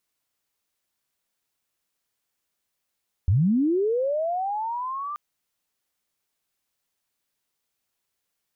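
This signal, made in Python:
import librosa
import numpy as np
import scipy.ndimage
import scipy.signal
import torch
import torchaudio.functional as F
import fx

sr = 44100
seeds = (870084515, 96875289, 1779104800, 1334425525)

y = fx.chirp(sr, length_s=1.88, from_hz=78.0, to_hz=1200.0, law='linear', from_db=-16.0, to_db=-29.0)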